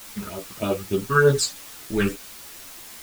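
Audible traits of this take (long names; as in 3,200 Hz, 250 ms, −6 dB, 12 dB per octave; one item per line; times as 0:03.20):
sample-and-hold tremolo 3.5 Hz, depth 75%
phaser sweep stages 12, 3.3 Hz, lowest notch 600–2,100 Hz
a quantiser's noise floor 8 bits, dither triangular
a shimmering, thickened sound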